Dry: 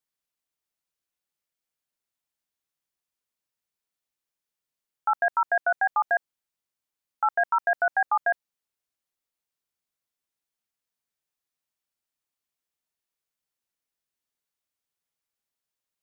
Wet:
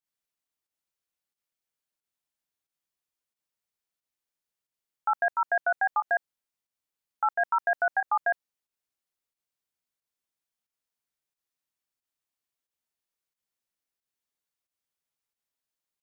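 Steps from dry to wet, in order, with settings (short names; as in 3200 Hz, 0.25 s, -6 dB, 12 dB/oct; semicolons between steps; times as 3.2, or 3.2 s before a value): pump 90 bpm, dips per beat 1, -10 dB, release 0.107 s; gain -2 dB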